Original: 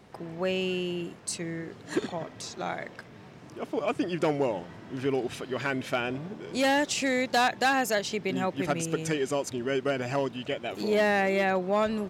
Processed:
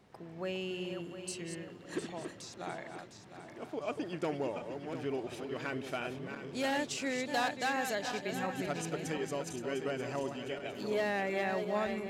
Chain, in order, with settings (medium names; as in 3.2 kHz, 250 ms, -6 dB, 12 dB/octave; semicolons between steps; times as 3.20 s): backward echo that repeats 353 ms, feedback 63%, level -7 dB; trim -9 dB